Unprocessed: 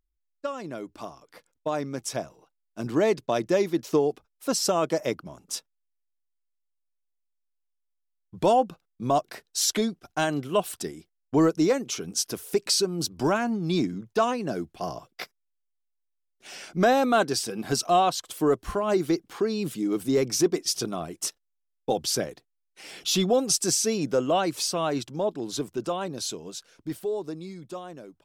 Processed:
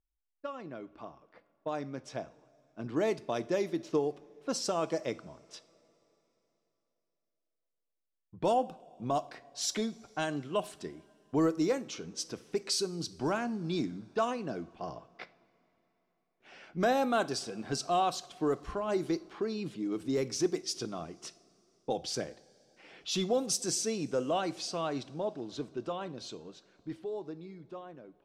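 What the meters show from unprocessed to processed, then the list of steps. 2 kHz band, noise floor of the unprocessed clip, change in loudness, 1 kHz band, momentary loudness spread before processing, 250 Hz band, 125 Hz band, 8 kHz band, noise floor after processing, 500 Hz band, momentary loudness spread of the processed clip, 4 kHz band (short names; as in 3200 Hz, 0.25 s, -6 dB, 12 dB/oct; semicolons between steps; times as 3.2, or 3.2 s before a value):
-7.5 dB, -78 dBFS, -7.5 dB, -7.5 dB, 15 LU, -7.5 dB, -7.5 dB, -9.5 dB, -84 dBFS, -7.5 dB, 16 LU, -8.0 dB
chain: low-pass opened by the level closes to 2100 Hz, open at -18 dBFS; two-slope reverb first 0.43 s, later 3.5 s, from -18 dB, DRR 13.5 dB; gain -7.5 dB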